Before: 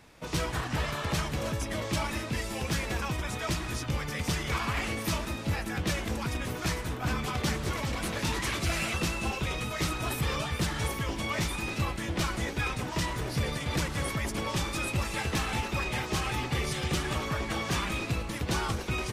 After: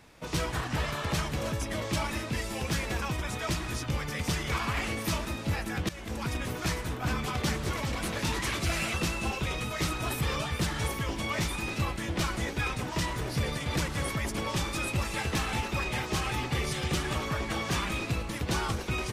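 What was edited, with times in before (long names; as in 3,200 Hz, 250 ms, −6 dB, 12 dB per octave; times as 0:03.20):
0:05.89–0:06.26: fade in, from −18 dB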